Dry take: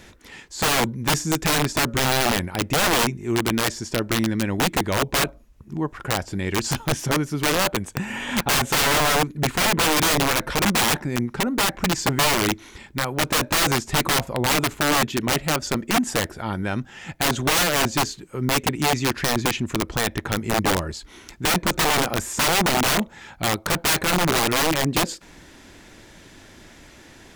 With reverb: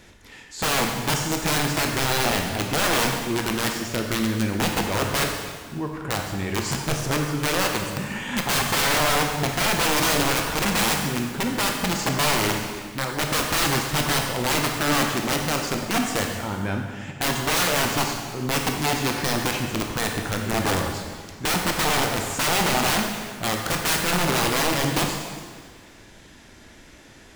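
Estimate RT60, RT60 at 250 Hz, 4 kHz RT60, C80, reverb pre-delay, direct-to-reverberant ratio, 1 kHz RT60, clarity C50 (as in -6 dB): 1.8 s, 1.8 s, 1.6 s, 5.0 dB, 17 ms, 1.5 dB, 1.7 s, 3.5 dB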